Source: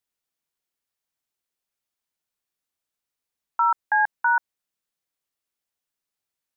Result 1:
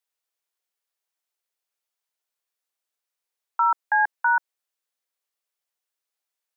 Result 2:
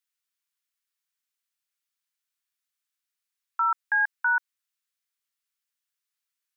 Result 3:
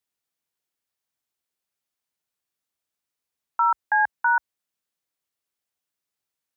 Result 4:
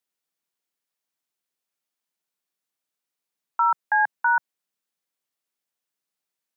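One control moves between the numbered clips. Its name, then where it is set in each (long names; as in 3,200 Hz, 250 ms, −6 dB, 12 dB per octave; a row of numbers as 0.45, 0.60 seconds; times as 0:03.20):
high-pass filter, corner frequency: 400, 1,200, 49, 140 Hertz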